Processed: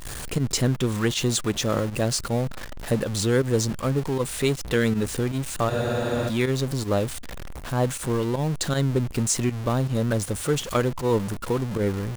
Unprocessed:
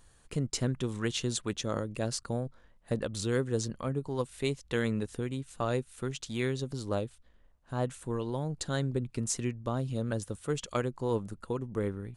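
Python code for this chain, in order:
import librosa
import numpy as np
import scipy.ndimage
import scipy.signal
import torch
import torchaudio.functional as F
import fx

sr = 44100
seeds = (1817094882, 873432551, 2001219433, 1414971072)

y = x + 0.5 * 10.0 ** (-35.5 / 20.0) * np.sign(x)
y = fx.volume_shaper(y, sr, bpm=158, per_beat=1, depth_db=-11, release_ms=67.0, shape='fast start')
y = fx.spec_freeze(y, sr, seeds[0], at_s=5.72, hold_s=0.56)
y = y * 10.0 ** (7.0 / 20.0)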